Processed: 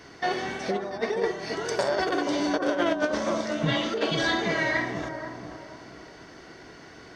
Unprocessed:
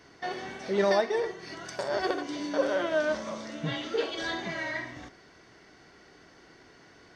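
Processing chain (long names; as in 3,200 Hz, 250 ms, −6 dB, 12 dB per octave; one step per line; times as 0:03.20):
compressor whose output falls as the input rises −30 dBFS, ratio −0.5
on a send: bucket-brigade delay 479 ms, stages 4,096, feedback 37%, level −6 dB
on the sum: level +5 dB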